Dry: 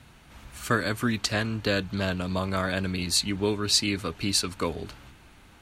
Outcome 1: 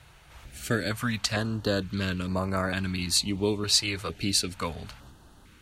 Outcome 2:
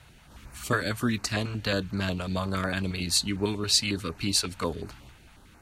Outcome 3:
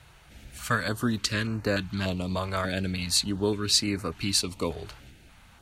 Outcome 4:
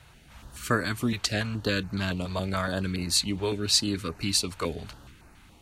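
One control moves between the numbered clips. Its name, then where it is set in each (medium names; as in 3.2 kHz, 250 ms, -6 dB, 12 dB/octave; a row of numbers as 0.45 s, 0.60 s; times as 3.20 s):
step-sequenced notch, rate: 2.2 Hz, 11 Hz, 3.4 Hz, 7.1 Hz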